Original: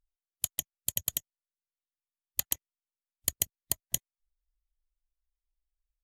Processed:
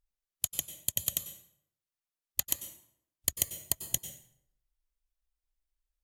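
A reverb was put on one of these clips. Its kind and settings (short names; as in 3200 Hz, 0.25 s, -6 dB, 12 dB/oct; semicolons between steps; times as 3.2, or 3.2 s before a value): plate-style reverb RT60 0.7 s, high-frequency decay 0.7×, pre-delay 85 ms, DRR 9 dB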